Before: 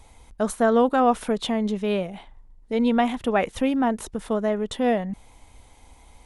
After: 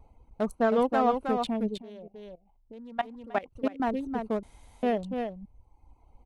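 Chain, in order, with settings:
adaptive Wiener filter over 25 samples
reverb reduction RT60 1.3 s
single-tap delay 317 ms −5.5 dB
0:01.77–0:03.80: output level in coarse steps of 20 dB
0:04.43–0:04.83: fill with room tone
level −4 dB

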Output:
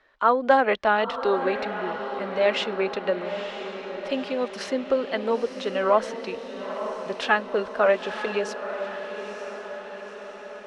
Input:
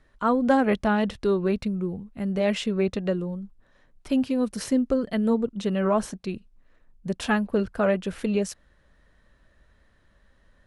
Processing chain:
three-way crossover with the lows and the highs turned down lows −23 dB, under 410 Hz, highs −23 dB, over 5,100 Hz
feedback delay with all-pass diffusion 935 ms, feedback 59%, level −9 dB
level +5.5 dB

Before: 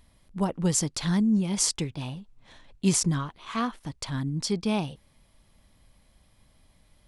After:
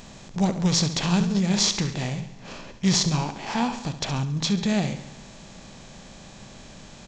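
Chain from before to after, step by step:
compressor on every frequency bin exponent 0.6
hum removal 54.81 Hz, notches 6
downsampling to 22,050 Hz
repeating echo 69 ms, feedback 56%, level −11.5 dB
formants moved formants −5 semitones
level +1 dB

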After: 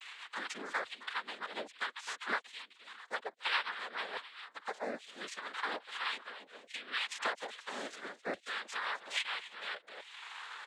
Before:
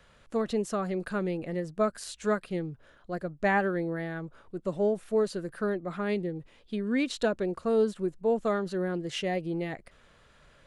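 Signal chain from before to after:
vocoder with a gliding carrier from G3, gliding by +4 semitones
Chebyshev band-pass filter 350–4,300 Hz, order 4
spectral tilt +4.5 dB per octave
far-end echo of a speakerphone 260 ms, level −13 dB
auto-filter high-pass saw down 1.2 Hz 870–2,500 Hz
cochlear-implant simulation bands 6
rotating-speaker cabinet horn 7.5 Hz, later 0.65 Hz, at 0:03.72
multiband upward and downward compressor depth 70%
level +8 dB

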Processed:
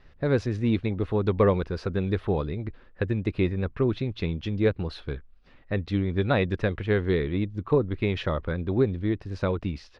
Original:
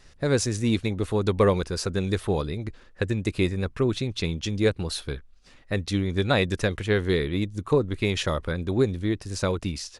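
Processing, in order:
high-frequency loss of the air 330 metres

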